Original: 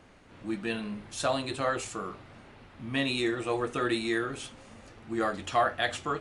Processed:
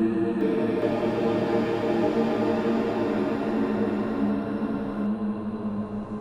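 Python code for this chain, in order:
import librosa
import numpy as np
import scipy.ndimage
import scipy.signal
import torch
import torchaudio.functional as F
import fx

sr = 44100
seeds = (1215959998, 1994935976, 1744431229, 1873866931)

y = fx.recorder_agc(x, sr, target_db=-18.0, rise_db_per_s=13.0, max_gain_db=30)
y = fx.high_shelf_res(y, sr, hz=1500.0, db=-13.5, q=1.5)
y = fx.paulstretch(y, sr, seeds[0], factor=18.0, window_s=0.5, from_s=0.6)
y = fx.echo_pitch(y, sr, ms=410, semitones=5, count=2, db_per_echo=-3.0)
y = y * 10.0 ** (3.5 / 20.0)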